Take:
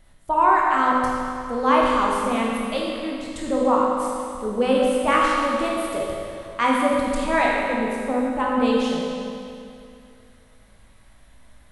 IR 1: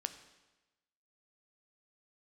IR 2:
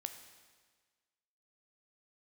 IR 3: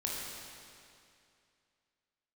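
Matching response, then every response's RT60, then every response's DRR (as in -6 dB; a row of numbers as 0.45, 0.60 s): 3; 1.1, 1.5, 2.5 s; 9.0, 7.0, -3.5 dB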